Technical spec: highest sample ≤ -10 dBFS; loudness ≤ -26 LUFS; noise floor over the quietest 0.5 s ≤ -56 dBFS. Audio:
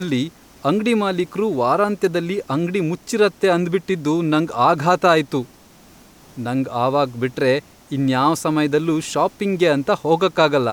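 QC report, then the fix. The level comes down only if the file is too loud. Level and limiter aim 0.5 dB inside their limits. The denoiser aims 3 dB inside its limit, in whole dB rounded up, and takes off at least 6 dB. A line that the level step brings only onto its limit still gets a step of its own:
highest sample -4.0 dBFS: fail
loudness -19.0 LUFS: fail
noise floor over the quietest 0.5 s -48 dBFS: fail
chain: denoiser 6 dB, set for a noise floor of -48 dBFS; gain -7.5 dB

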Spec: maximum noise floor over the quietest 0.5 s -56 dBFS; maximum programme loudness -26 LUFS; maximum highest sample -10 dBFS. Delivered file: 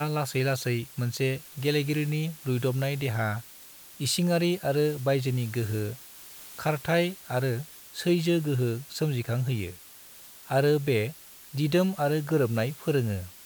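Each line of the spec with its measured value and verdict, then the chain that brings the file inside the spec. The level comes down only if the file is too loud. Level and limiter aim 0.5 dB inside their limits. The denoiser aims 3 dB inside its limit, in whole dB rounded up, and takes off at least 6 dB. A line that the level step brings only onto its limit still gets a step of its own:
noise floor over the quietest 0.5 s -49 dBFS: fail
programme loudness -28.0 LUFS: OK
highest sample -12.5 dBFS: OK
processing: denoiser 10 dB, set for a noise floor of -49 dBFS

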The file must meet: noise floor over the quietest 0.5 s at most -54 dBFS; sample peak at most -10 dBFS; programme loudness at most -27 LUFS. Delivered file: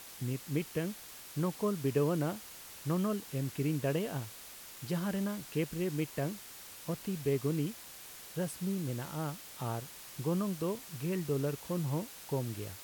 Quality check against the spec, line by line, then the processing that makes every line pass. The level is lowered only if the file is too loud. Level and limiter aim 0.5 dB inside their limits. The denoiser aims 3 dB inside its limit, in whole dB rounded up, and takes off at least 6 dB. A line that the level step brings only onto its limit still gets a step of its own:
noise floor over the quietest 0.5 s -50 dBFS: fail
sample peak -19.0 dBFS: OK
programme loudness -36.0 LUFS: OK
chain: denoiser 7 dB, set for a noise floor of -50 dBFS

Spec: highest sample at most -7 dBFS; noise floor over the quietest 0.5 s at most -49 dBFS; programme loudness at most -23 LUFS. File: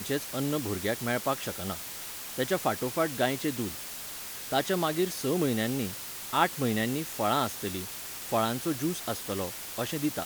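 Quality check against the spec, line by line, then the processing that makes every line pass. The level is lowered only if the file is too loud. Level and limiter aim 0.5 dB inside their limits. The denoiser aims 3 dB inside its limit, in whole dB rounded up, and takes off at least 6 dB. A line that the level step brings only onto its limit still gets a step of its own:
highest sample -8.0 dBFS: OK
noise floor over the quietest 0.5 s -40 dBFS: fail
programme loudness -30.5 LUFS: OK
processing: denoiser 12 dB, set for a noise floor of -40 dBFS

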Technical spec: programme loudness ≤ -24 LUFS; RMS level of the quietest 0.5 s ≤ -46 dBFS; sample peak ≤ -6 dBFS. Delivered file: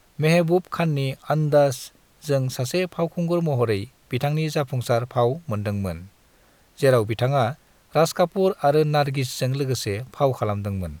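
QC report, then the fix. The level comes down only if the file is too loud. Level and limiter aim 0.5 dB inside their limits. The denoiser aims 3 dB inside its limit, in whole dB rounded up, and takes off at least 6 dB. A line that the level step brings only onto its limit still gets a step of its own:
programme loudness -23.0 LUFS: fail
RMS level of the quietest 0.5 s -57 dBFS: OK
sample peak -6.5 dBFS: OK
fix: gain -1.5 dB

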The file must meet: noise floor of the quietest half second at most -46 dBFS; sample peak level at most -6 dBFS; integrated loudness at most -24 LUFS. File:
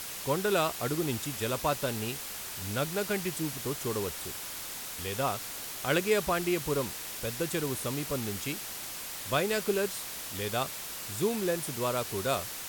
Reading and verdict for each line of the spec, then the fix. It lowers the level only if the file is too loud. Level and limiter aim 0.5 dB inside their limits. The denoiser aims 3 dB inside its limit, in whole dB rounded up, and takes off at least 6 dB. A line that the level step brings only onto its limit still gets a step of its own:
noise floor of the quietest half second -40 dBFS: fail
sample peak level -14.5 dBFS: OK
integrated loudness -31.5 LUFS: OK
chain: denoiser 9 dB, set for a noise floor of -40 dBFS

